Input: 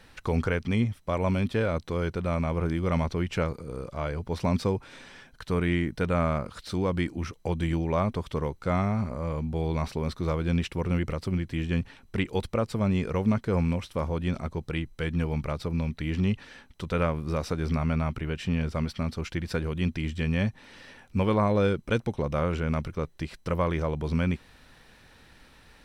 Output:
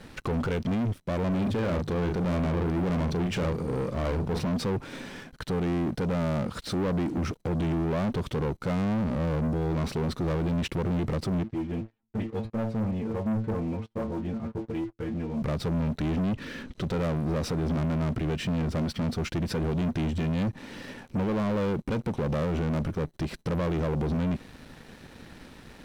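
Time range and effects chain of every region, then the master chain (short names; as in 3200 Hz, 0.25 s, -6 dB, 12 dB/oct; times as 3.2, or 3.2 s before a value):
1.28–4.44 notches 50/100/150 Hz + doubler 39 ms -8 dB
11.43–15.42 LPF 1300 Hz 6 dB/oct + metallic resonator 110 Hz, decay 0.24 s, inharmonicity 0.002 + gate -51 dBFS, range -8 dB
16.15–16.84 LPF 5800 Hz + bell 800 Hz -12.5 dB 0.38 oct + upward compressor, threshold -38 dBFS
whole clip: bell 230 Hz +11 dB 2.6 oct; limiter -16 dBFS; sample leveller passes 3; gain -7.5 dB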